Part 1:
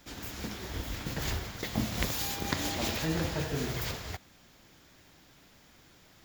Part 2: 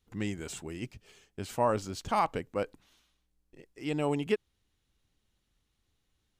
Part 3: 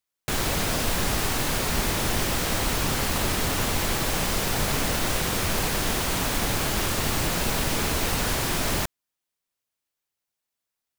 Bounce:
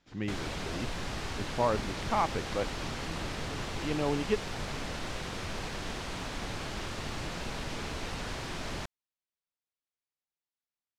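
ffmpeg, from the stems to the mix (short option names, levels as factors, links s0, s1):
-filter_complex "[0:a]volume=0.224[s0];[1:a]lowpass=3500,volume=0.891[s1];[2:a]volume=0.282[s2];[s0][s1][s2]amix=inputs=3:normalize=0,lowpass=5500"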